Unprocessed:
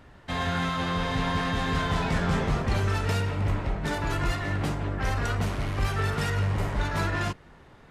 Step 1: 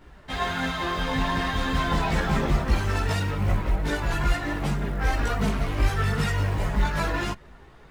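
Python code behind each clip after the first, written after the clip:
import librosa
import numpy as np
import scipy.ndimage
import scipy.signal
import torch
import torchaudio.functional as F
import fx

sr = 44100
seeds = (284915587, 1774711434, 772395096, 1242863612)

y = fx.quant_float(x, sr, bits=4)
y = fx.chorus_voices(y, sr, voices=6, hz=0.38, base_ms=17, depth_ms=3.2, mix_pct=60)
y = y * 10.0 ** (4.5 / 20.0)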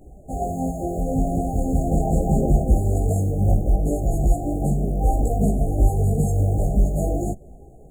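y = fx.brickwall_bandstop(x, sr, low_hz=820.0, high_hz=6500.0)
y = y * 10.0 ** (5.5 / 20.0)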